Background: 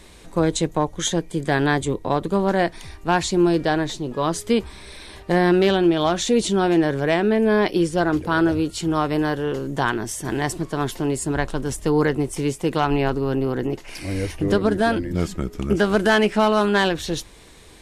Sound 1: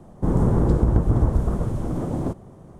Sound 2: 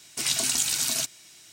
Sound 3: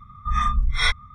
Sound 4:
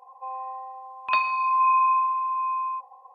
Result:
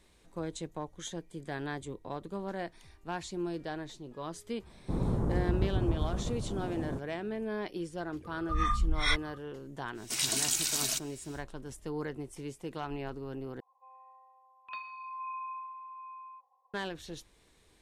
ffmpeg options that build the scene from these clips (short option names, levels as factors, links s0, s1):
-filter_complex "[0:a]volume=0.126[s0];[4:a]equalizer=f=690:t=o:w=0.85:g=-7[s1];[s0]asplit=2[s2][s3];[s2]atrim=end=13.604[s4];[s1]atrim=end=3.14,asetpts=PTS-STARTPTS,volume=0.133[s5];[s3]atrim=start=16.736[s6];[1:a]atrim=end=2.79,asetpts=PTS-STARTPTS,volume=0.266,afade=t=in:d=0.004:c=hsin,afade=t=out:st=2.786:d=0.004:c=hsin,adelay=4660[s7];[3:a]atrim=end=1.14,asetpts=PTS-STARTPTS,volume=0.422,afade=t=in:d=0.004:c=hsin,afade=t=out:st=1.136:d=0.004:c=hsin,adelay=8240[s8];[2:a]atrim=end=1.52,asetpts=PTS-STARTPTS,volume=0.562,afade=t=in:d=0.1,afade=t=out:st=1.42:d=0.1,adelay=9930[s9];[s4][s5]acrossfade=d=0.004:c1=hsin:c2=hsin[s10];[s10][s6]acrossfade=d=0.004:c1=hsin:c2=hsin[s11];[s11][s7][s8][s9]amix=inputs=4:normalize=0"